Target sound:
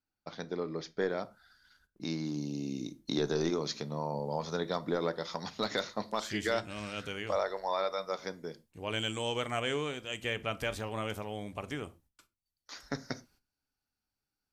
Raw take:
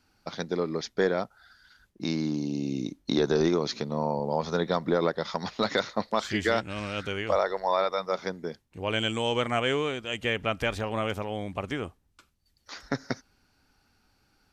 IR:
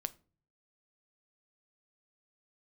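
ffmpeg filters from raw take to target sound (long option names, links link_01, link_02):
-filter_complex "[0:a]agate=range=-17dB:threshold=-59dB:ratio=16:detection=peak,asetnsamples=nb_out_samples=441:pad=0,asendcmd='1.1 highshelf g 5.5;2.26 highshelf g 12',highshelf=frequency=6800:gain=-6.5[link_01];[1:a]atrim=start_sample=2205,atrim=end_sample=6174[link_02];[link_01][link_02]afir=irnorm=-1:irlink=0,volume=-6dB"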